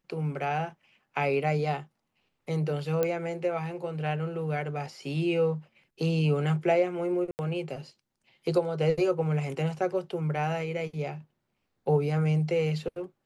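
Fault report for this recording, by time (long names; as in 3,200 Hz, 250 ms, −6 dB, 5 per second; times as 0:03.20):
0:03.03: click −14 dBFS
0:07.31–0:07.39: drop-out 79 ms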